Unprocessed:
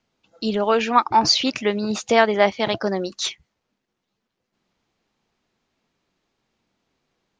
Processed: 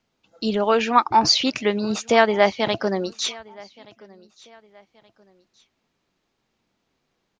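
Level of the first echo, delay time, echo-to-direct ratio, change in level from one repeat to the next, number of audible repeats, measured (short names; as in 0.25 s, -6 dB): -24.0 dB, 1.175 s, -23.5 dB, -9.0 dB, 2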